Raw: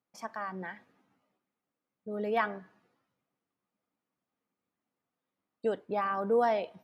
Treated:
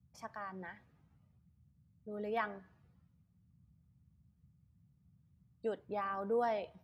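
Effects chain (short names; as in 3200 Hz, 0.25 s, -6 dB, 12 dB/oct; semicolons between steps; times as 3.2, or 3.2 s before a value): band noise 59–180 Hz -61 dBFS; gain -7 dB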